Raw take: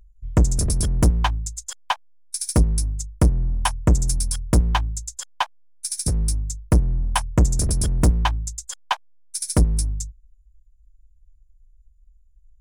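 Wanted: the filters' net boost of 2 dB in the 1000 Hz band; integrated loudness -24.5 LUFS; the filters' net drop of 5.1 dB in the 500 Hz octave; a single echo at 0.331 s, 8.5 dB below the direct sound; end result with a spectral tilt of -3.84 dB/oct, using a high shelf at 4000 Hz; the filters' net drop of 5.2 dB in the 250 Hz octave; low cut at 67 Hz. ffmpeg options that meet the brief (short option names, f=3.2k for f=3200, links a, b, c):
-af "highpass=67,equalizer=f=250:t=o:g=-7,equalizer=f=500:t=o:g=-5.5,equalizer=f=1k:t=o:g=3.5,highshelf=f=4k:g=7,aecho=1:1:331:0.376,volume=-2dB"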